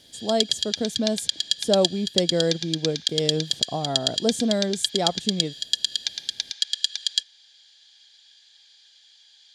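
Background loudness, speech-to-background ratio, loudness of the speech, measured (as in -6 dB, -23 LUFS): -25.5 LUFS, -1.0 dB, -26.5 LUFS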